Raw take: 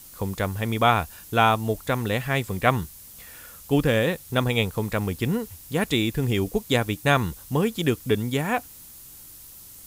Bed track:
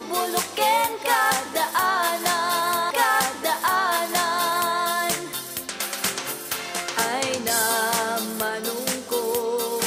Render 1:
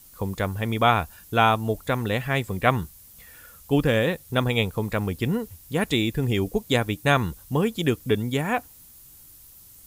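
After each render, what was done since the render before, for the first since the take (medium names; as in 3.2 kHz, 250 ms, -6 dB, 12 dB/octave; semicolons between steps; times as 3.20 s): noise reduction 6 dB, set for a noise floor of -45 dBFS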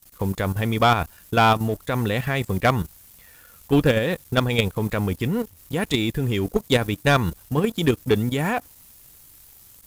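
level held to a coarse grid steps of 10 dB; waveshaping leveller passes 2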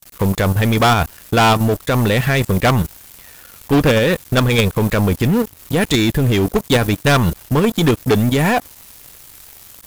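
waveshaping leveller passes 3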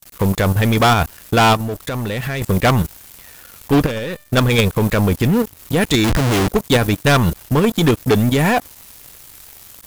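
1.55–2.42 s: compression, threshold -20 dBFS; 3.86–4.33 s: feedback comb 600 Hz, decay 0.51 s, mix 70%; 6.04–6.48 s: Schmitt trigger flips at -36.5 dBFS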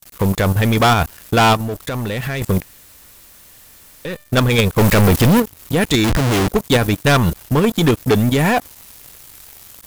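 2.62–4.05 s: room tone; 4.78–5.40 s: waveshaping leveller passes 5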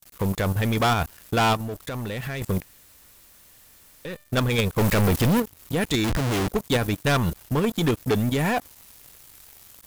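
trim -8 dB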